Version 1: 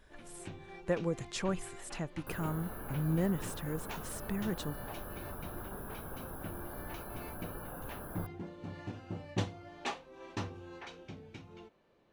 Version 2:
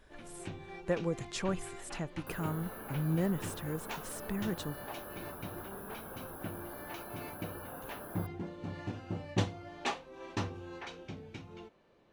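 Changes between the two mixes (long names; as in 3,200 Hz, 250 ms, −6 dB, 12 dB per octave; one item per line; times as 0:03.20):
first sound +3.0 dB
second sound: add high-pass filter 220 Hz 6 dB per octave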